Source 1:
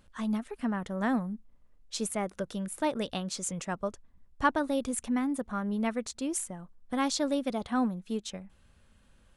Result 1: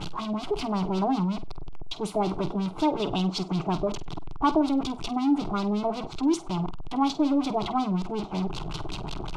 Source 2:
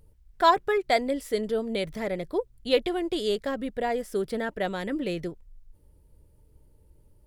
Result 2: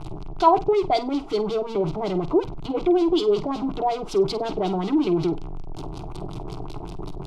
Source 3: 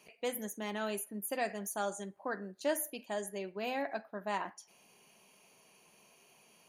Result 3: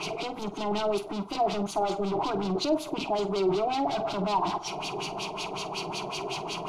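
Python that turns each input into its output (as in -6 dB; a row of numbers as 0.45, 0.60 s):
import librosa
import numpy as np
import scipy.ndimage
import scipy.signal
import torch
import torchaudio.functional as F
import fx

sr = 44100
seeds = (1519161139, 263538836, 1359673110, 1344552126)

y = x + 0.5 * 10.0 ** (-24.0 / 20.0) * np.sign(x)
y = fx.fixed_phaser(y, sr, hz=350.0, stages=8)
y = fx.filter_lfo_lowpass(y, sr, shape='sine', hz=5.4, low_hz=580.0, high_hz=4500.0, q=1.9)
y = fx.room_flutter(y, sr, wall_m=8.3, rt60_s=0.21)
y = fx.dynamic_eq(y, sr, hz=270.0, q=0.98, threshold_db=-41.0, ratio=4.0, max_db=6)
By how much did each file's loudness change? +4.5, +4.5, +8.5 LU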